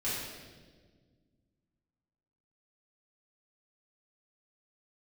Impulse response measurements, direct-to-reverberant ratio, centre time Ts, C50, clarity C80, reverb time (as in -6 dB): -11.0 dB, 92 ms, -1.0 dB, 1.5 dB, 1.5 s